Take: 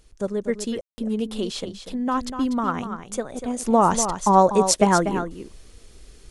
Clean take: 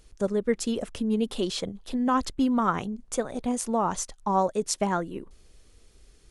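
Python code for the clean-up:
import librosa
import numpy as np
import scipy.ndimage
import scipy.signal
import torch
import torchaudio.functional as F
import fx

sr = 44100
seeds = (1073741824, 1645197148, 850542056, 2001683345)

y = fx.fix_ambience(x, sr, seeds[0], print_start_s=5.78, print_end_s=6.28, start_s=0.81, end_s=0.98)
y = fx.fix_echo_inverse(y, sr, delay_ms=243, level_db=-9.5)
y = fx.fix_level(y, sr, at_s=3.65, step_db=-8.5)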